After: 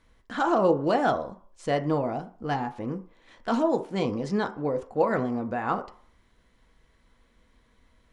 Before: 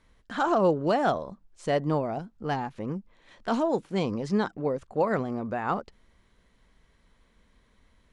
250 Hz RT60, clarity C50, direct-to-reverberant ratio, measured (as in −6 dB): 0.40 s, 15.0 dB, 6.0 dB